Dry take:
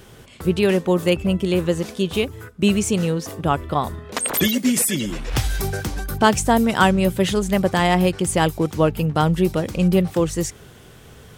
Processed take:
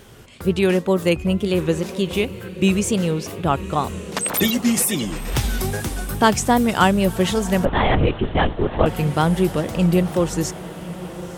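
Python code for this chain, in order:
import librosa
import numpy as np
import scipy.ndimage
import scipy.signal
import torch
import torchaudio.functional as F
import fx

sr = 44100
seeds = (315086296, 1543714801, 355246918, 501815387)

y = fx.wow_flutter(x, sr, seeds[0], rate_hz=2.1, depth_cents=96.0)
y = fx.echo_diffused(y, sr, ms=1062, feedback_pct=59, wet_db=-15)
y = fx.lpc_vocoder(y, sr, seeds[1], excitation='whisper', order=10, at=(7.65, 8.86))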